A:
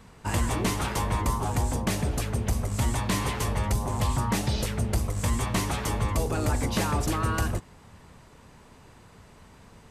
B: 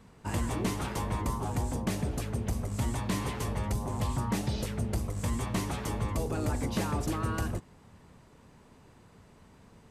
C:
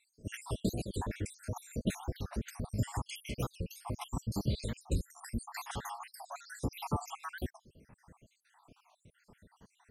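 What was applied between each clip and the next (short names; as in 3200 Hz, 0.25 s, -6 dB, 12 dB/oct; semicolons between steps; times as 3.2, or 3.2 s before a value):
bell 240 Hz +5 dB 2.7 oct; gain -7.5 dB
random spectral dropouts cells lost 73%; record warp 45 rpm, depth 250 cents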